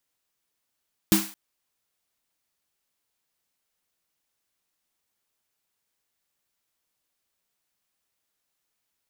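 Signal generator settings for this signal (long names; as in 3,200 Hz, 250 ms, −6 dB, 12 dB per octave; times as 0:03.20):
synth snare length 0.22 s, tones 200 Hz, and 320 Hz, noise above 710 Hz, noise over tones −4 dB, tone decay 0.27 s, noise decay 0.44 s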